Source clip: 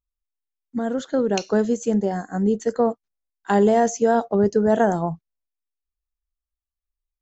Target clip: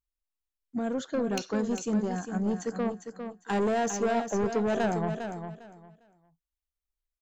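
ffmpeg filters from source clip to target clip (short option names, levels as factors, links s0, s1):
-filter_complex "[0:a]asettb=1/sr,asplit=3[s0][s1][s2];[s0]atrim=end=1.244[s3];[s1]atrim=start=1.24:end=3.53,asetpts=PTS-STARTPTS,afade=t=in:d=0.004:c=qsin,afade=t=out:st=2.286:d=0.004:c=qsin,equalizer=f=540:w=1.3:g=-5.5[s4];[s2]atrim=start=3.526[s5];[s3][s4]acrossfade=d=0.004:c1=hsin:c2=qsin[s6];[s6][s5]acrossfade=d=0.004:c1=qsin:c2=hsin,asoftclip=type=tanh:threshold=0.112,aecho=1:1:403|806|1209:0.398|0.0836|0.0176,volume=0.631"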